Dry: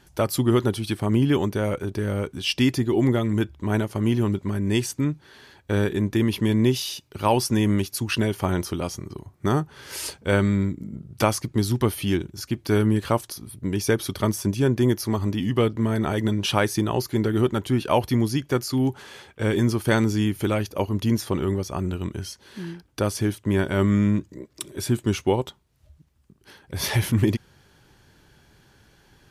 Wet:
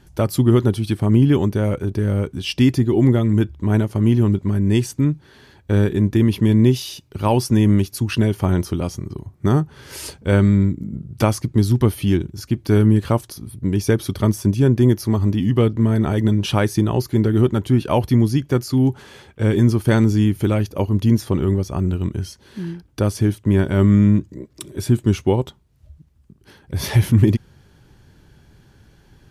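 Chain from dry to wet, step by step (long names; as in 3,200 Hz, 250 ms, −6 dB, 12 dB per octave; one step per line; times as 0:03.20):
low-shelf EQ 340 Hz +10 dB
level −1 dB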